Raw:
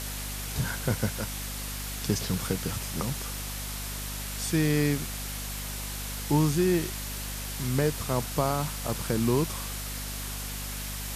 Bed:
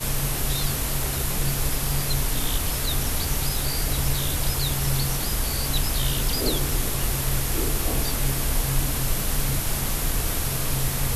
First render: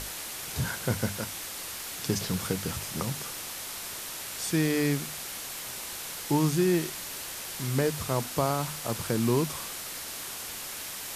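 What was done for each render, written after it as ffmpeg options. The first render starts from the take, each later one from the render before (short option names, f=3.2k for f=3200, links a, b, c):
-af "bandreject=f=50:t=h:w=6,bandreject=f=100:t=h:w=6,bandreject=f=150:t=h:w=6,bandreject=f=200:t=h:w=6,bandreject=f=250:t=h:w=6"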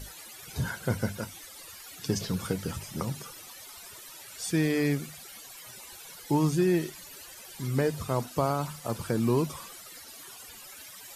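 -af "afftdn=nr=16:nf=-39"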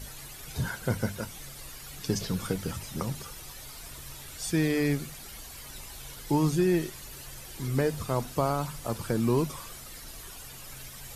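-filter_complex "[1:a]volume=-23dB[a];[0:a][a]amix=inputs=2:normalize=0"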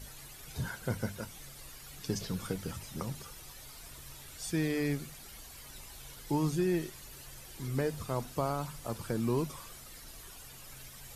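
-af "volume=-5.5dB"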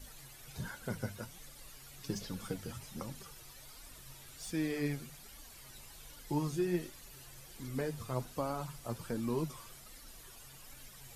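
-filter_complex "[0:a]acrossover=split=750|4800[a][b][c];[c]asoftclip=type=hard:threshold=-39dB[d];[a][b][d]amix=inputs=3:normalize=0,flanger=delay=3.4:depth=5.3:regen=38:speed=1.3:shape=sinusoidal"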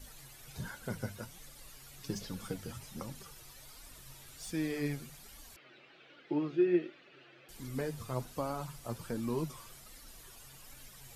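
-filter_complex "[0:a]asettb=1/sr,asplit=3[a][b][c];[a]atrim=end=5.564[d];[b]atrim=start=5.56:end=7.49,asetpts=PTS-STARTPTS,afade=t=in:d=0.004:c=qsin,afade=t=out:st=1.926:d=0.004:c=qsin,highpass=f=180:w=0.5412,highpass=f=180:w=1.3066,equalizer=f=210:t=q:w=4:g=-7,equalizer=f=340:t=q:w=4:g=8,equalizer=f=580:t=q:w=4:g=3,equalizer=f=960:t=q:w=4:g=-9,equalizer=f=1.4k:t=q:w=4:g=4,equalizer=f=2.5k:t=q:w=4:g=4,lowpass=f=3.3k:w=0.5412,lowpass=f=3.3k:w=1.3066[e];[c]atrim=start=7.486[f];[d][e]acrossfade=d=0.004:c1=hsin:c2=qsin[g];[g][f]acrossfade=d=0.004:c1=qsin:c2=hsin"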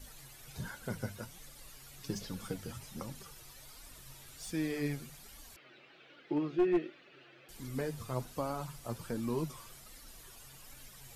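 -af "aeval=exprs='clip(val(0),-1,0.0531)':c=same"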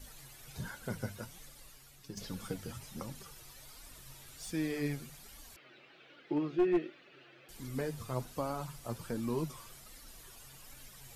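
-filter_complex "[0:a]asplit=2[a][b];[a]atrim=end=2.17,asetpts=PTS-STARTPTS,afade=t=out:st=1.38:d=0.79:silence=0.316228[c];[b]atrim=start=2.17,asetpts=PTS-STARTPTS,afade=t=in:d=0.004:c=hsin:silence=0.316228[d];[c][d]concat=n=2:v=0:a=1"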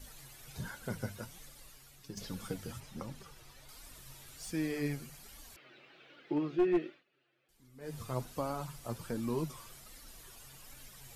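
-filter_complex "[0:a]asettb=1/sr,asplit=3[a][b][c];[a]atrim=end=2.804[d];[b]atrim=start=2.8:end=3.69,asetpts=PTS-STARTPTS,afade=t=in:d=0.004:c=qsin,afade=t=out:st=0.886:d=0.004:c=qsin,highshelf=f=5.8k:g=-9.5[e];[c]atrim=start=3.686[f];[d][e]acrossfade=d=0.004:c1=hsin:c2=qsin[g];[g][f]acrossfade=d=0.004:c1=qsin:c2=hsin,asettb=1/sr,asplit=3[h][i][j];[h]atrim=end=4.384[k];[i]atrim=start=4.38:end=5.23,asetpts=PTS-STARTPTS,afade=t=in:d=0.004:c=qsin,afade=t=out:st=0.846:d=0.004:c=qsin,bandreject=f=3.6k:w=11[l];[j]atrim=start=5.226[m];[k][l]acrossfade=d=0.004:c1=hsin:c2=qsin[n];[n][m]acrossfade=d=0.004:c1=qsin:c2=hsin,asplit=3[o][p][q];[o]atrim=end=7.04,asetpts=PTS-STARTPTS,afade=t=out:st=6.88:d=0.16:silence=0.11885[r];[p]atrim=start=7.04:end=7.8,asetpts=PTS-STARTPTS,volume=-18.5dB[s];[q]atrim=start=7.8,asetpts=PTS-STARTPTS,afade=t=in:d=0.16:silence=0.11885[t];[r][s][t]concat=n=3:v=0:a=1"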